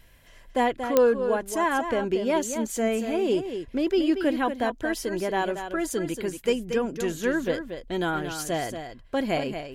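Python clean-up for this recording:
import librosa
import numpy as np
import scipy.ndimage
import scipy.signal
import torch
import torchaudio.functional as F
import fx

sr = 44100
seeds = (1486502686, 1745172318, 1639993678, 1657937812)

y = fx.fix_declick_ar(x, sr, threshold=10.0)
y = fx.fix_echo_inverse(y, sr, delay_ms=232, level_db=-8.5)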